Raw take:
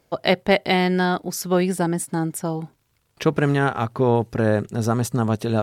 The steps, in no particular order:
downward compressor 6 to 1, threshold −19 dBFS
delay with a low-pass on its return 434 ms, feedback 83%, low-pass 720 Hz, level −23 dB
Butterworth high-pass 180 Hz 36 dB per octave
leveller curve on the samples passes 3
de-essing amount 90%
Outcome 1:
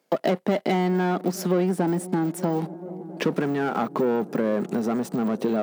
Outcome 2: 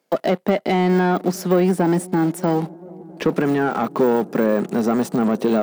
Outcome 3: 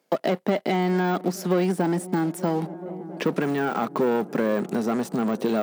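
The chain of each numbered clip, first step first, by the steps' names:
leveller curve on the samples, then de-essing, then delay with a low-pass on its return, then downward compressor, then Butterworth high-pass
downward compressor, then leveller curve on the samples, then Butterworth high-pass, then de-essing, then delay with a low-pass on its return
leveller curve on the samples, then delay with a low-pass on its return, then downward compressor, then de-essing, then Butterworth high-pass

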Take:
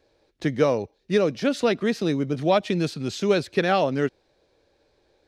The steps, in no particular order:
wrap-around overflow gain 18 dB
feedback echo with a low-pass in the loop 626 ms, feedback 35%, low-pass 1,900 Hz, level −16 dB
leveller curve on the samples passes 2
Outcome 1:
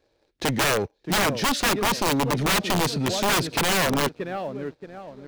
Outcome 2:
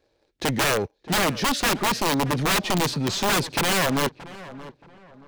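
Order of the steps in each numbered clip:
feedback echo with a low-pass in the loop, then wrap-around overflow, then leveller curve on the samples
wrap-around overflow, then leveller curve on the samples, then feedback echo with a low-pass in the loop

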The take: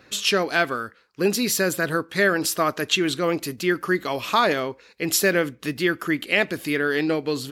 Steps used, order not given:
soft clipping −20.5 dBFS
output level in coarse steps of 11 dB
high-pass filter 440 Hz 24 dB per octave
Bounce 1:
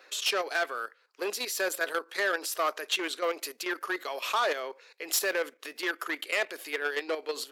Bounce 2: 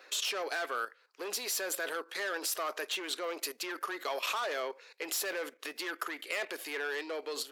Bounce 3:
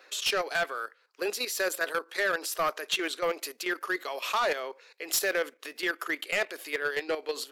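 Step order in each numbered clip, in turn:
output level in coarse steps, then soft clipping, then high-pass filter
soft clipping, then output level in coarse steps, then high-pass filter
output level in coarse steps, then high-pass filter, then soft clipping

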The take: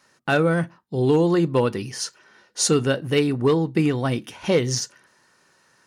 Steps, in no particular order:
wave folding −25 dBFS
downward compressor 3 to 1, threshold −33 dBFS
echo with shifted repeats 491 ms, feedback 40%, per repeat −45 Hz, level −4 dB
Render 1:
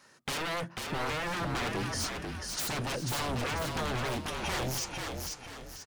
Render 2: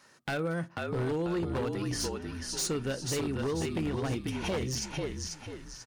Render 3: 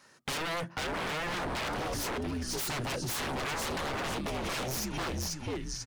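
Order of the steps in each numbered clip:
wave folding, then downward compressor, then echo with shifted repeats
downward compressor, then echo with shifted repeats, then wave folding
echo with shifted repeats, then wave folding, then downward compressor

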